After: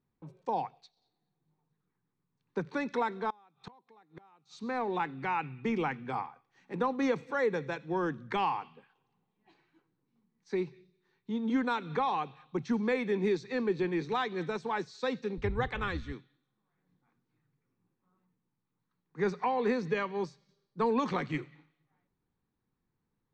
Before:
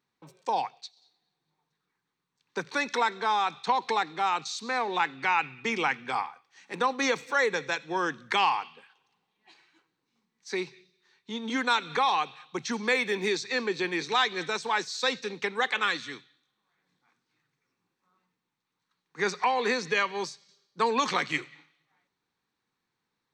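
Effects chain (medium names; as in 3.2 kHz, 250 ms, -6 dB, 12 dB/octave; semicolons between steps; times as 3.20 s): 15.37–16.12 s: octave divider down 2 oct, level -4 dB; tilt EQ -4.5 dB/octave; 3.30–4.58 s: inverted gate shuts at -26 dBFS, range -29 dB; trim -6 dB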